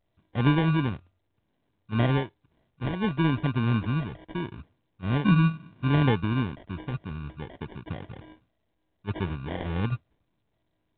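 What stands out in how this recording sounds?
a buzz of ramps at a fixed pitch in blocks of 8 samples; phasing stages 12, 0.67 Hz, lowest notch 620–1300 Hz; aliases and images of a low sample rate 1.3 kHz, jitter 0%; µ-law

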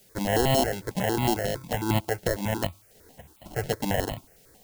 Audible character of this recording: aliases and images of a low sample rate 1.2 kHz, jitter 0%; tremolo saw up 1.5 Hz, depth 50%; a quantiser's noise floor 10-bit, dither triangular; notches that jump at a steady rate 11 Hz 290–1600 Hz

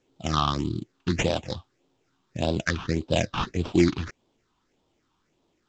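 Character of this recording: aliases and images of a low sample rate 4.4 kHz, jitter 20%; phasing stages 6, 1.7 Hz, lowest notch 520–1900 Hz; µ-law

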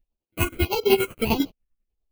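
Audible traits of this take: aliases and images of a low sample rate 1.8 kHz, jitter 0%; phasing stages 4, 1.6 Hz, lowest notch 770–1700 Hz; chopped level 10 Hz, depth 60%, duty 35%; a shimmering, thickened sound

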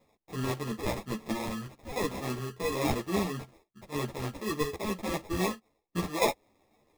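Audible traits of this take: aliases and images of a low sample rate 1.5 kHz, jitter 0%; chopped level 0.51 Hz, depth 65%, duty 85%; a shimmering, thickened sound

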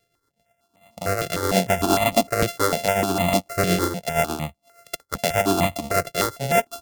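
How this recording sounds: a buzz of ramps at a fixed pitch in blocks of 64 samples; tremolo triangle 8.4 Hz, depth 65%; notches that jump at a steady rate 6.6 Hz 250–1500 Hz

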